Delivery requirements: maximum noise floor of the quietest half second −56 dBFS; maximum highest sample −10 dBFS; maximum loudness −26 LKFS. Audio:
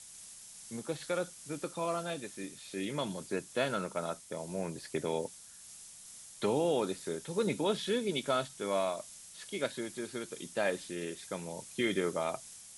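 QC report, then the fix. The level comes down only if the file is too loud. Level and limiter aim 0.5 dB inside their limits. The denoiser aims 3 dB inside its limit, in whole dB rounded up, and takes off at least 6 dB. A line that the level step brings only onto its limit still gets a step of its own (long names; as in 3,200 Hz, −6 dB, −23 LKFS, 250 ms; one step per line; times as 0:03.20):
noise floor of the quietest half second −52 dBFS: out of spec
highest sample −19.0 dBFS: in spec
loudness −35.5 LKFS: in spec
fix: broadband denoise 7 dB, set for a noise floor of −52 dBFS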